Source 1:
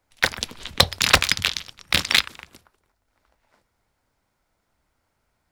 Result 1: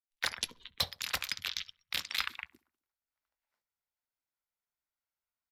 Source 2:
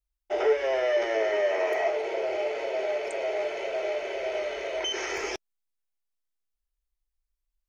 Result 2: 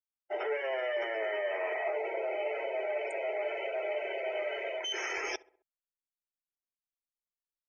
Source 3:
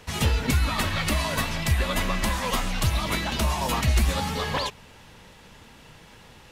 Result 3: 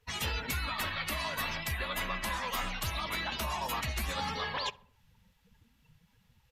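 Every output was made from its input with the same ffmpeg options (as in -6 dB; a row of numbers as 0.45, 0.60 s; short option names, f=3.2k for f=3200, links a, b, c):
-filter_complex "[0:a]afftdn=nr=27:nf=-38,tiltshelf=f=730:g=-7,aresample=32000,aresample=44100,areverse,acompressor=threshold=-29dB:ratio=10,areverse,aexciter=amount=3.9:drive=3.6:freq=12k,asplit=2[a][b];[b]adelay=66,lowpass=f=1.7k:p=1,volume=-21.5dB,asplit=2[c][d];[d]adelay=66,lowpass=f=1.7k:p=1,volume=0.54,asplit=2[e][f];[f]adelay=66,lowpass=f=1.7k:p=1,volume=0.54,asplit=2[g][h];[h]adelay=66,lowpass=f=1.7k:p=1,volume=0.54[i];[c][e][g][i]amix=inputs=4:normalize=0[j];[a][j]amix=inputs=2:normalize=0,acontrast=87,adynamicequalizer=threshold=0.00891:dfrequency=2100:dqfactor=0.7:tfrequency=2100:tqfactor=0.7:attack=5:release=100:ratio=0.375:range=2:mode=cutabove:tftype=highshelf,volume=-8dB"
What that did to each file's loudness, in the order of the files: -15.5, -6.0, -8.5 LU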